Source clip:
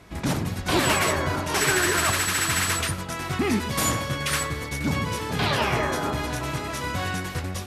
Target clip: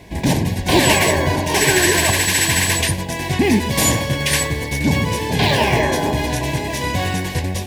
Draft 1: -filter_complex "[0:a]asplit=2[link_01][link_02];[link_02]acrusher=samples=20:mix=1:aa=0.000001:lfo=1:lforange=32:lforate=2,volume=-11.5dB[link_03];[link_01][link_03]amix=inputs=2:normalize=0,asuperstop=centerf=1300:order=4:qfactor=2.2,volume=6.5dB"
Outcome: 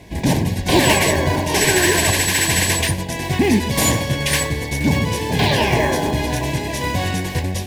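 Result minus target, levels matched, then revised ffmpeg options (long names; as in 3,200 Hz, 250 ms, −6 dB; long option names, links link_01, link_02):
sample-and-hold swept by an LFO: distortion +9 dB
-filter_complex "[0:a]asplit=2[link_01][link_02];[link_02]acrusher=samples=4:mix=1:aa=0.000001:lfo=1:lforange=6.4:lforate=2,volume=-11.5dB[link_03];[link_01][link_03]amix=inputs=2:normalize=0,asuperstop=centerf=1300:order=4:qfactor=2.2,volume=6.5dB"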